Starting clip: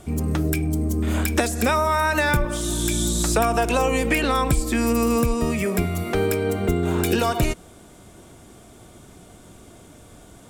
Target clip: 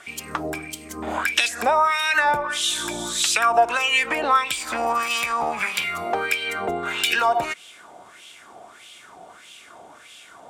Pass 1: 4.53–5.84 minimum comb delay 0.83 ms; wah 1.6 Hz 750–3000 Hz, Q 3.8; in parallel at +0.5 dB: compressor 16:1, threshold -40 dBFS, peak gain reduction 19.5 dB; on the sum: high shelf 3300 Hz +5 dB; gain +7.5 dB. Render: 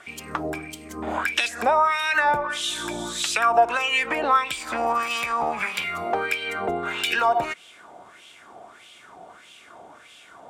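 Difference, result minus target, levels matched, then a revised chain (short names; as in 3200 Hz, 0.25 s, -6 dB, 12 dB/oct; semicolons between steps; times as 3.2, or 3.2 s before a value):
8000 Hz band -4.5 dB
4.53–5.84 minimum comb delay 0.83 ms; wah 1.6 Hz 750–3000 Hz, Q 3.8; in parallel at +0.5 dB: compressor 16:1, threshold -40 dBFS, peak gain reduction 19.5 dB; on the sum: high shelf 3300 Hz +12.5 dB; gain +7.5 dB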